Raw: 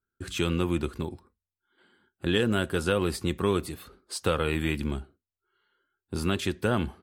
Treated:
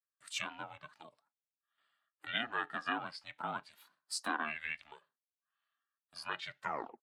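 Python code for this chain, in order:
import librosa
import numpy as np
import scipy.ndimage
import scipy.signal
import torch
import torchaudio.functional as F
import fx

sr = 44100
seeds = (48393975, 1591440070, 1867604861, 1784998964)

y = fx.tape_stop_end(x, sr, length_s=0.44)
y = fx.env_lowpass_down(y, sr, base_hz=3000.0, full_db=-22.5)
y = scipy.signal.sosfilt(scipy.signal.bessel(8, 930.0, 'highpass', norm='mag', fs=sr, output='sos'), y)
y = y * np.sin(2.0 * np.pi * 230.0 * np.arange(len(y)) / sr)
y = fx.noise_reduce_blind(y, sr, reduce_db=11)
y = y * librosa.db_to_amplitude(1.0)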